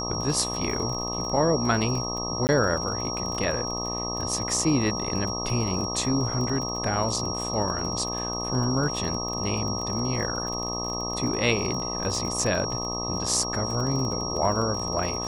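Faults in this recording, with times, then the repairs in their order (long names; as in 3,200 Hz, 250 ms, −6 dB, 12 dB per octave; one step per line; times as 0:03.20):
mains buzz 60 Hz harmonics 21 −33 dBFS
surface crackle 31 per second −31 dBFS
whistle 5,600 Hz −31 dBFS
0:02.47–0:02.49: drop-out 19 ms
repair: click removal
hum removal 60 Hz, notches 21
notch filter 5,600 Hz, Q 30
repair the gap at 0:02.47, 19 ms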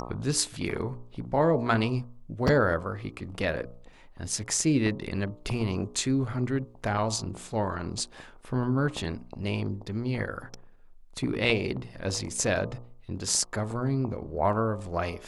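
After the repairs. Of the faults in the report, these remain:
none of them is left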